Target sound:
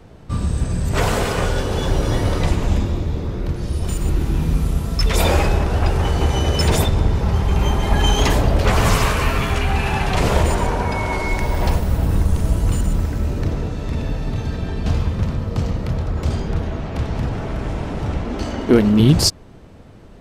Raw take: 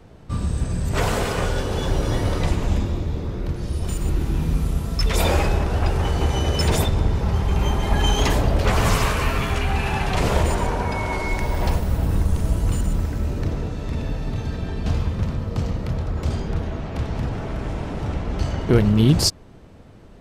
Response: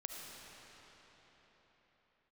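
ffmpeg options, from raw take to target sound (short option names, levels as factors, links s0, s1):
-filter_complex "[0:a]asettb=1/sr,asplit=3[s0][s1][s2];[s0]atrim=end=18.254[s3];[s1]atrim=start=18.25:end=19,asetpts=PTS-STARTPTS,afade=t=in:d=0.004:c=qsin,afade=t=out:st=0.746:d=0.004:c=qsin,lowshelf=f=190:t=q:w=3:g=-6[s4];[s2]atrim=start=18.996[s5];[s3][s4]acrossfade=d=0.004:c1=hsin:c2=qsin[s6];[s6][s5]acrossfade=d=0.004:c1=qsin:c2=hsin,volume=1.41"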